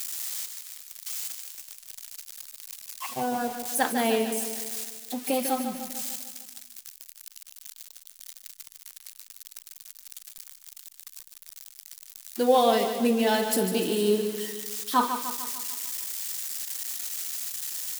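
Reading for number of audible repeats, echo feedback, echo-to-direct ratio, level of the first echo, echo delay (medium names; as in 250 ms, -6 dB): 6, 55%, -7.0 dB, -8.5 dB, 149 ms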